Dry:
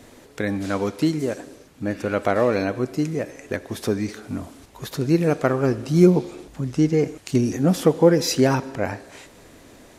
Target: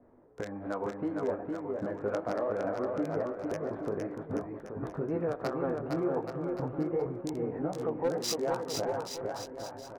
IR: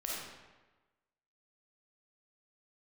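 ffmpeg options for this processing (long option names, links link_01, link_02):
-filter_complex "[0:a]flanger=delay=16:depth=4.2:speed=2.7,acrossover=split=530|1300[link_01][link_02][link_03];[link_01]acompressor=threshold=-36dB:ratio=10[link_04];[link_03]acrusher=bits=3:mix=0:aa=0.5[link_05];[link_04][link_02][link_05]amix=inputs=3:normalize=0,bass=frequency=250:gain=-4,treble=frequency=4000:gain=9,agate=range=-12dB:threshold=-44dB:ratio=16:detection=peak,adynamicsmooth=sensitivity=4:basefreq=4000,asoftclip=type=hard:threshold=-16.5dB,alimiter=level_in=3.5dB:limit=-24dB:level=0:latency=1:release=319,volume=-3.5dB,asplit=2[link_06][link_07];[link_07]aecho=0:1:460|828|1122|1358|1546:0.631|0.398|0.251|0.158|0.1[link_08];[link_06][link_08]amix=inputs=2:normalize=0,adynamicequalizer=threshold=0.00158:dfrequency=5300:dqfactor=0.7:tfrequency=5300:tqfactor=0.7:attack=5:release=100:ratio=0.375:range=2:mode=cutabove:tftype=highshelf,volume=4dB"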